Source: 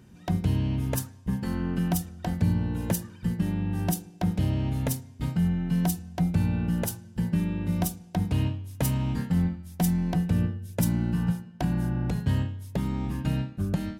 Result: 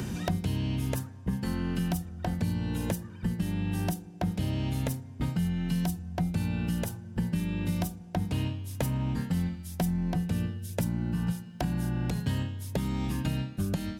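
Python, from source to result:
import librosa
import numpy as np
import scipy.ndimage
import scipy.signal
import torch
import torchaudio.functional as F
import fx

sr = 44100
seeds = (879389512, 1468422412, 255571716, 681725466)

y = fx.band_squash(x, sr, depth_pct=100)
y = y * librosa.db_to_amplitude(-4.0)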